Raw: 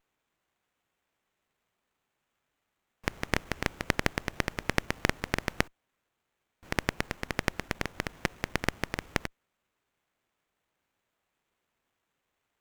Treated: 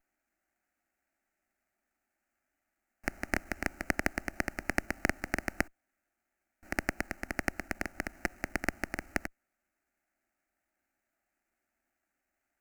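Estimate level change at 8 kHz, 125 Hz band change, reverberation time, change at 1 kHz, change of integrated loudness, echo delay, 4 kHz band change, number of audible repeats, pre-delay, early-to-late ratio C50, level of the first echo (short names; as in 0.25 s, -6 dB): -2.5 dB, -8.0 dB, none, -3.5 dB, -2.5 dB, none, -10.0 dB, none, none, none, none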